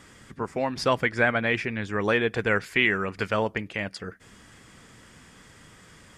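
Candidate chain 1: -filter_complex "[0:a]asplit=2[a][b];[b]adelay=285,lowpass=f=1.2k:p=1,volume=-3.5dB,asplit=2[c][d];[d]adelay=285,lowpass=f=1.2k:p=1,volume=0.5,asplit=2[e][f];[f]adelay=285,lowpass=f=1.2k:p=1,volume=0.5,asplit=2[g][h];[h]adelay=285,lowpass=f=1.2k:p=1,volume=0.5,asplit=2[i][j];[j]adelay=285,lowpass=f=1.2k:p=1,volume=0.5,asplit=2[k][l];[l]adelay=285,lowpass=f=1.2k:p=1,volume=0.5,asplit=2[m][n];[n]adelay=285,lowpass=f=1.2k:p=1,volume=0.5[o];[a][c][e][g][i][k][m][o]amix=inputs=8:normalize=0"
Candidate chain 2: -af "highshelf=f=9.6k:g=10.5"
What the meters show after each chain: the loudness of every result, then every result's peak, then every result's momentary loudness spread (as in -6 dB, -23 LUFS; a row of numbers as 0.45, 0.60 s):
-25.0, -25.5 LUFS; -7.5, -8.0 dBFS; 14, 11 LU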